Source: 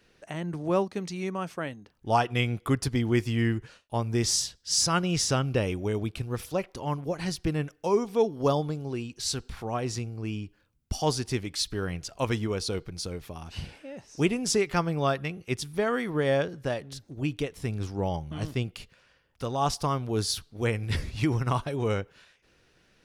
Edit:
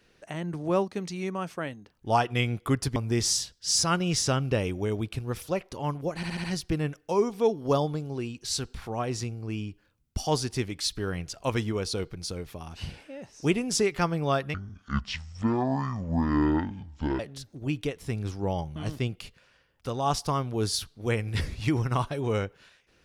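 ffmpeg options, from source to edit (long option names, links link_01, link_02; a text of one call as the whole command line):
ffmpeg -i in.wav -filter_complex "[0:a]asplit=8[link_01][link_02][link_03][link_04][link_05][link_06][link_07][link_08];[link_01]atrim=end=2.962[link_09];[link_02]atrim=start=3.988:end=7.262[link_10];[link_03]atrim=start=7.188:end=7.262[link_11];[link_04]atrim=start=7.188:end=7.262[link_12];[link_05]atrim=start=7.188:end=7.262[link_13];[link_06]atrim=start=7.188:end=15.294[link_14];[link_07]atrim=start=15.29:end=16.75,asetpts=PTS-STARTPTS,asetrate=24255,aresample=44100,atrim=end_sample=117065,asetpts=PTS-STARTPTS[link_15];[link_08]atrim=start=16.746[link_16];[link_09][link_10]acrossfade=duration=0.004:curve1=hsin:curve2=hsin[link_17];[link_17][link_11]acrossfade=duration=0.004:curve1=hsin:curve2=hsin[link_18];[link_18][link_12]acrossfade=duration=0.004:curve1=hsin:curve2=hsin[link_19];[link_19][link_13]acrossfade=duration=0.004:curve1=hsin:curve2=hsin[link_20];[link_20][link_14]acrossfade=duration=0.004:curve1=hsin:curve2=hsin[link_21];[link_21][link_15]acrossfade=duration=0.004:curve1=hsin:curve2=hsin[link_22];[link_22][link_16]acrossfade=duration=0.004:curve1=hsin:curve2=hsin" out.wav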